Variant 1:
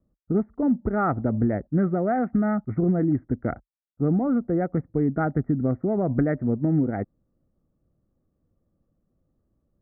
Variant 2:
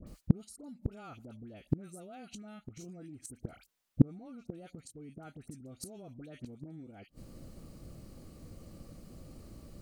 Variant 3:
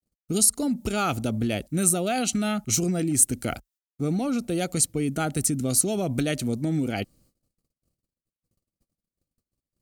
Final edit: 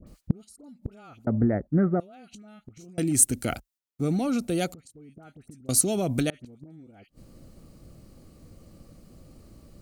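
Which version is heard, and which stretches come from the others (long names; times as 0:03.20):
2
0:01.27–0:02.00: punch in from 1
0:02.98–0:04.74: punch in from 3
0:05.69–0:06.30: punch in from 3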